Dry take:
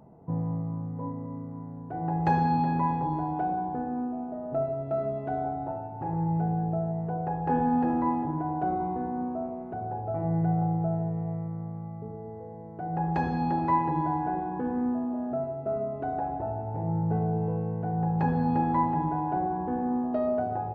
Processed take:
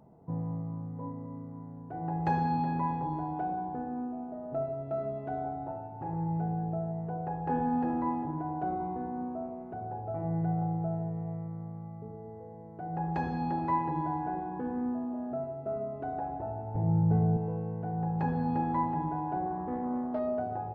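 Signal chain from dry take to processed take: 16.75–17.37 s: bass shelf 200 Hz +11 dB; 19.46–20.19 s: loudspeaker Doppler distortion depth 0.17 ms; trim -4.5 dB

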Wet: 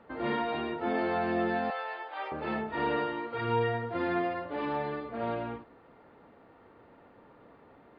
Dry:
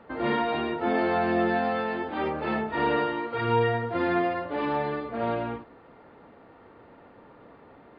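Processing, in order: 1.70–2.32 s: high-pass 580 Hz 24 dB/octave; trim -5 dB

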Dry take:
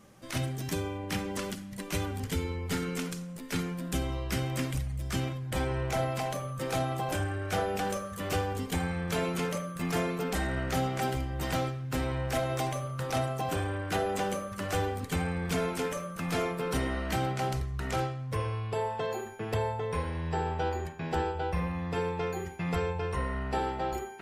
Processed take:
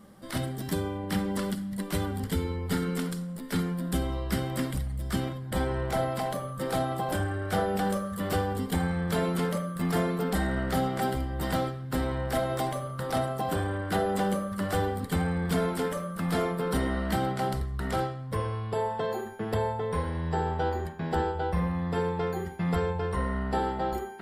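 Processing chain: graphic EQ with 31 bands 125 Hz -5 dB, 200 Hz +7 dB, 2.5 kHz -11 dB, 6.3 kHz -12 dB; trim +2.5 dB

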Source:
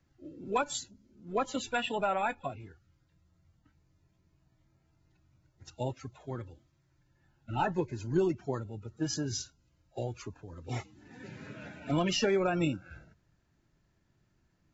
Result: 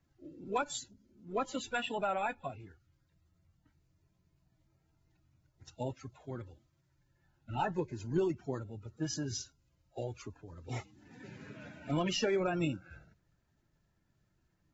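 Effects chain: coarse spectral quantiser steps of 15 dB; trim -3 dB

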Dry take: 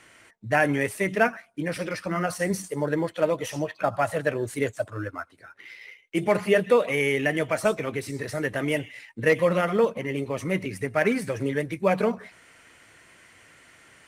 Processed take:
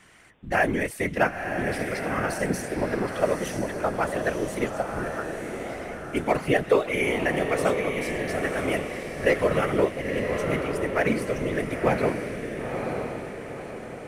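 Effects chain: mains buzz 120 Hz, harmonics 30, -61 dBFS -4 dB/octave; whisper effect; echo that smears into a reverb 977 ms, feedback 46%, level -5 dB; trim -1.5 dB

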